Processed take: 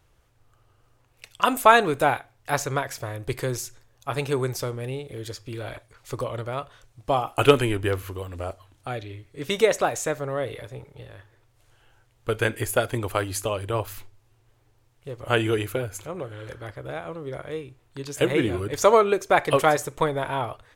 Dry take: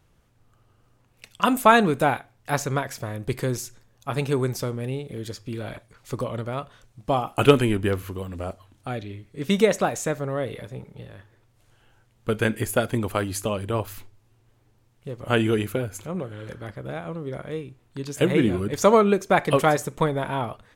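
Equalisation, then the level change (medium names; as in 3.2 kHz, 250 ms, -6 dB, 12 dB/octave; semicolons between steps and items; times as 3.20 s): peaking EQ 200 Hz -13.5 dB 0.71 oct; +1.0 dB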